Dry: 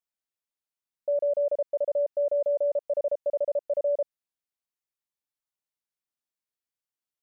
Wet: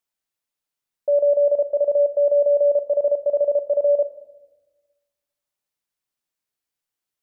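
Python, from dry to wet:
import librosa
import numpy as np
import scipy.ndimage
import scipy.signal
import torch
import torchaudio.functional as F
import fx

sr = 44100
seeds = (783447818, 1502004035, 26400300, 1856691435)

y = fx.room_shoebox(x, sr, seeds[0], volume_m3=650.0, walls='mixed', distance_m=0.38)
y = F.gain(torch.from_numpy(y), 6.0).numpy()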